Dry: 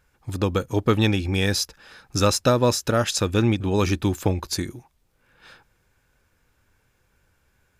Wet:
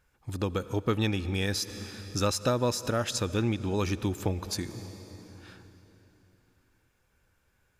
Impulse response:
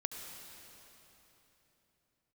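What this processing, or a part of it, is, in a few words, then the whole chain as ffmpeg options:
ducked reverb: -filter_complex "[0:a]asplit=3[a][b][c];[1:a]atrim=start_sample=2205[d];[b][d]afir=irnorm=-1:irlink=0[e];[c]apad=whole_len=343590[f];[e][f]sidechaincompress=threshold=-29dB:ratio=8:attack=48:release=223,volume=-3.5dB[g];[a][g]amix=inputs=2:normalize=0,volume=-9dB"

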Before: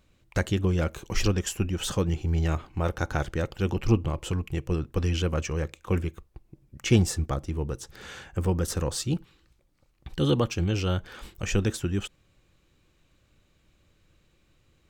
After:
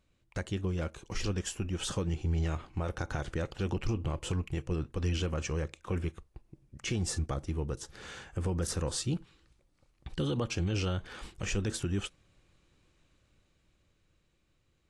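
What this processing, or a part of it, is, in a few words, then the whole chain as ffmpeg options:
low-bitrate web radio: -af "dynaudnorm=f=210:g=17:m=7dB,alimiter=limit=-14.5dB:level=0:latency=1:release=62,volume=-8.5dB" -ar 24000 -c:a aac -b:a 48k

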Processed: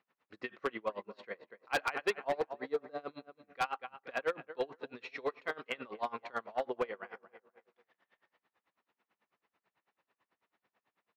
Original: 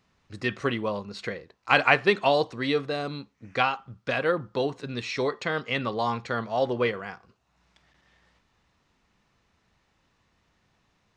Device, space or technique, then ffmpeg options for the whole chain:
helicopter radio: -filter_complex "[0:a]asplit=3[a][b][c];[a]afade=t=out:st=2.14:d=0.02[d];[b]equalizer=f=2.7k:t=o:w=1:g=-15,afade=t=in:st=2.14:d=0.02,afade=t=out:st=2.98:d=0.02[e];[c]afade=t=in:st=2.98:d=0.02[f];[d][e][f]amix=inputs=3:normalize=0,highpass=370,lowpass=2.6k,asplit=2[g][h];[h]adelay=241,lowpass=f=3.6k:p=1,volume=-14.5dB,asplit=2[i][j];[j]adelay=241,lowpass=f=3.6k:p=1,volume=0.38,asplit=2[k][l];[l]adelay=241,lowpass=f=3.6k:p=1,volume=0.38,asplit=2[m][n];[n]adelay=241,lowpass=f=3.6k:p=1,volume=0.38[o];[g][i][k][m][o]amix=inputs=5:normalize=0,aeval=exprs='val(0)*pow(10,-27*(0.5-0.5*cos(2*PI*9.1*n/s))/20)':c=same,asoftclip=type=hard:threshold=-22.5dB,volume=-2.5dB"

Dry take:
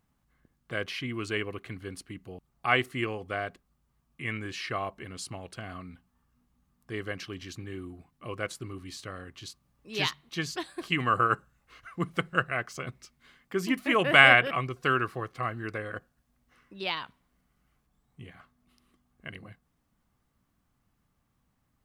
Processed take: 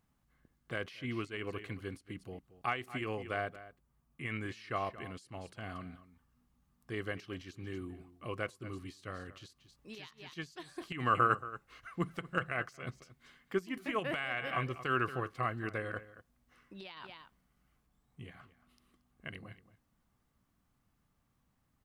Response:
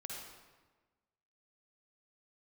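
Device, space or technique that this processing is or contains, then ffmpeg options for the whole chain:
de-esser from a sidechain: -filter_complex "[0:a]asettb=1/sr,asplit=3[a][b][c];[a]atrim=end=3.414[d];[b]atrim=start=3.41:end=4.26,asetpts=PTS-STARTPTS,afade=t=in:d=0.004:c=qsin,afade=t=out:st=0.846:d=0.004:c=qsin,equalizer=f=4k:w=0.57:g=-4.5[e];[c]atrim=start=4.256[f];[d][e]acrossfade=d=0.004:c1=hsin:c2=qsin[g];[g][f]acrossfade=d=0.004:c1=qsin:c2=hsin,asplit=2[h][i];[i]adelay=227.4,volume=-16dB,highshelf=f=4k:g=-5.12[j];[h][j]amix=inputs=2:normalize=0,asplit=2[k][l];[l]highpass=f=4.7k:w=0.5412,highpass=f=4.7k:w=1.3066,apad=whole_len=973585[m];[k][m]sidechaincompress=threshold=-55dB:ratio=10:attack=2:release=86,volume=-2.5dB"

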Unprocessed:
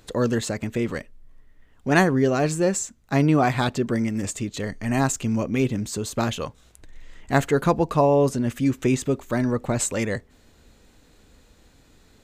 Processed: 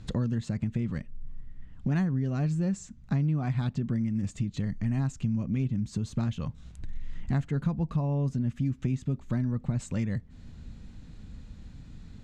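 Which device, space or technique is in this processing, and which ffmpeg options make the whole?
jukebox: -af "lowpass=6.1k,lowshelf=f=270:t=q:w=1.5:g=13.5,acompressor=threshold=-26dB:ratio=4,volume=-2.5dB"

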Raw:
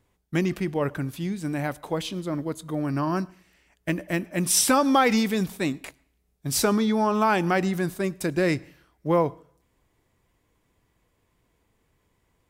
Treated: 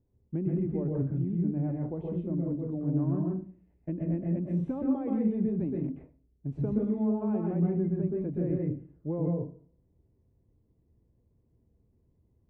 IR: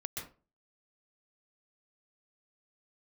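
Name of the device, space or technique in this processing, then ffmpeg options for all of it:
television next door: -filter_complex "[0:a]acompressor=threshold=-24dB:ratio=3,lowpass=390[a];[1:a]atrim=start_sample=2205[b];[a][b]afir=irnorm=-1:irlink=0,equalizer=f=1.25k:t=o:w=0.33:g=-5,equalizer=f=2.5k:t=o:w=0.33:g=5,equalizer=f=5k:t=o:w=0.33:g=-10"

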